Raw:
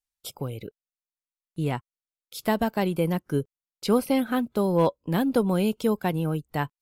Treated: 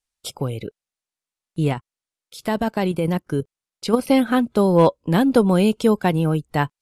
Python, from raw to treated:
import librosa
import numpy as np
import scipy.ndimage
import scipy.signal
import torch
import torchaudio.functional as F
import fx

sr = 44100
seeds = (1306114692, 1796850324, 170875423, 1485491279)

y = scipy.signal.sosfilt(scipy.signal.butter(4, 11000.0, 'lowpass', fs=sr, output='sos'), x)
y = fx.level_steps(y, sr, step_db=9, at=(1.68, 4.07))
y = y * librosa.db_to_amplitude(7.0)